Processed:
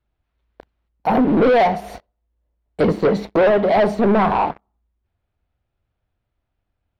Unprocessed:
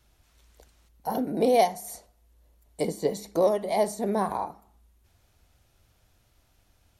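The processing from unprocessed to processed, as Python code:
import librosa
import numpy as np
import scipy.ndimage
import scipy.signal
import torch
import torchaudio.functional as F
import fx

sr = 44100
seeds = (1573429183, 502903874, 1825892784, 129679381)

y = fx.leveller(x, sr, passes=5)
y = fx.air_absorb(y, sr, metres=360.0)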